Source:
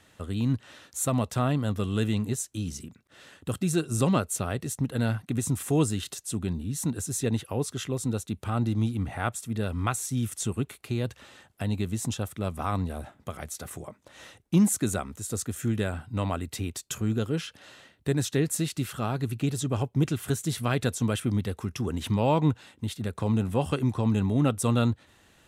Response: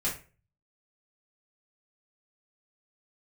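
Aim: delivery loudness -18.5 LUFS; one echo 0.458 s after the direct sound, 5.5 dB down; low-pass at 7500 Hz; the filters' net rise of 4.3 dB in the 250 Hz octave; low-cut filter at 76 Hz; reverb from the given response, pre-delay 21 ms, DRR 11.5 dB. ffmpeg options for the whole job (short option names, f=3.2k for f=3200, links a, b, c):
-filter_complex "[0:a]highpass=76,lowpass=7.5k,equalizer=f=250:t=o:g=5.5,aecho=1:1:458:0.531,asplit=2[a][b];[1:a]atrim=start_sample=2205,adelay=21[c];[b][c]afir=irnorm=-1:irlink=0,volume=-17.5dB[d];[a][d]amix=inputs=2:normalize=0,volume=6.5dB"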